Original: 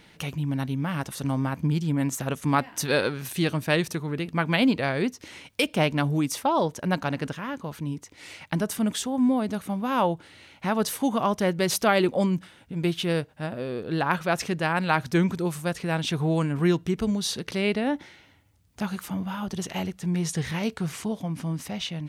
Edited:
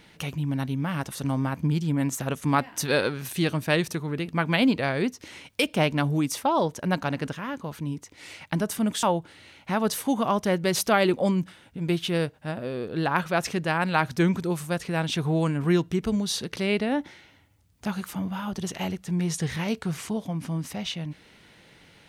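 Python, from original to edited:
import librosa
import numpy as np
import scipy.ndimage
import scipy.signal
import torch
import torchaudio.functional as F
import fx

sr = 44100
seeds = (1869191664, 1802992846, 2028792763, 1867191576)

y = fx.edit(x, sr, fx.cut(start_s=9.03, length_s=0.95), tone=tone)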